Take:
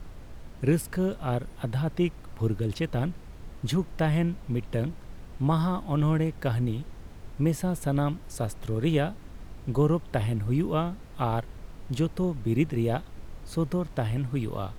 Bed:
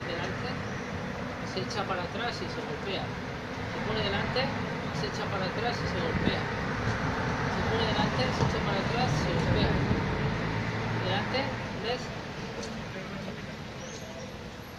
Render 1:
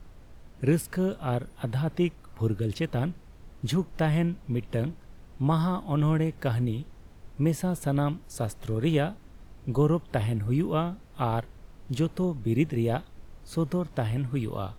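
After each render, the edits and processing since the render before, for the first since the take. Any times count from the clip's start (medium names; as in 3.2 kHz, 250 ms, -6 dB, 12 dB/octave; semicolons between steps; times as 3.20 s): noise print and reduce 6 dB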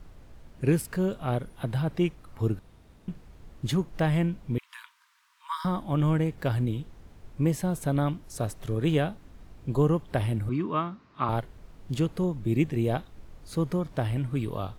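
2.59–3.08 s: room tone; 4.58–5.65 s: Chebyshev high-pass 940 Hz, order 8; 10.49–11.29 s: cabinet simulation 150–5100 Hz, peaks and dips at 160 Hz -4 dB, 500 Hz -9 dB, 770 Hz -7 dB, 1.1 kHz +9 dB, 3.3 kHz -5 dB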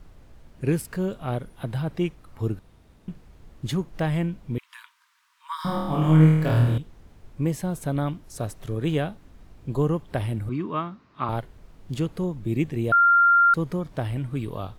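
5.56–6.78 s: flutter echo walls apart 4.4 m, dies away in 1 s; 12.92–13.54 s: bleep 1.39 kHz -13.5 dBFS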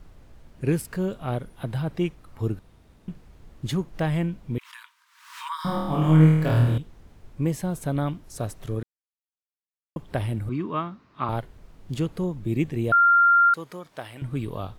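4.55–5.56 s: swell ahead of each attack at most 80 dB/s; 8.83–9.96 s: mute; 13.49–14.22 s: high-pass 980 Hz 6 dB/octave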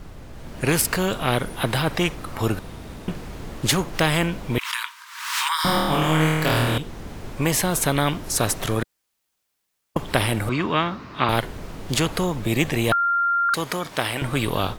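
level rider gain up to 8.5 dB; spectrum-flattening compressor 2:1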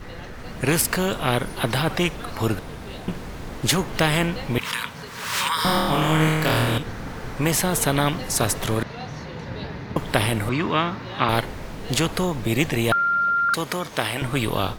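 add bed -6.5 dB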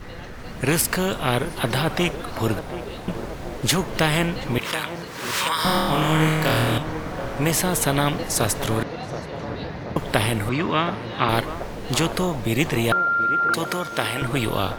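band-passed feedback delay 728 ms, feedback 76%, band-pass 540 Hz, level -9 dB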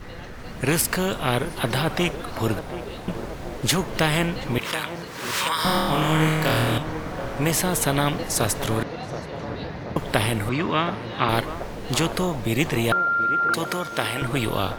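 trim -1 dB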